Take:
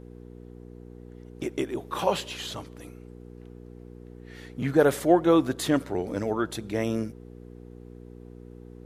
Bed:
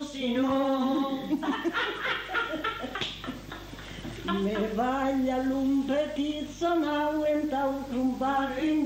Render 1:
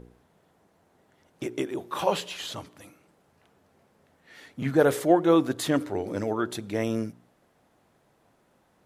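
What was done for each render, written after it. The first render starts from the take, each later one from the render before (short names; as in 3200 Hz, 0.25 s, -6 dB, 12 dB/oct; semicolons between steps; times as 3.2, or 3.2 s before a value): de-hum 60 Hz, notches 8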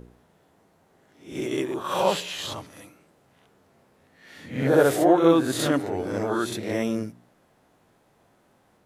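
spectral swells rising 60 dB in 0.43 s; on a send: reverse echo 66 ms -4 dB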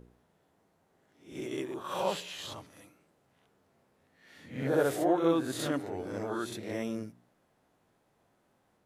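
gain -9 dB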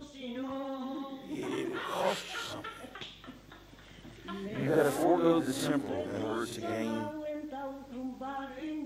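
add bed -12 dB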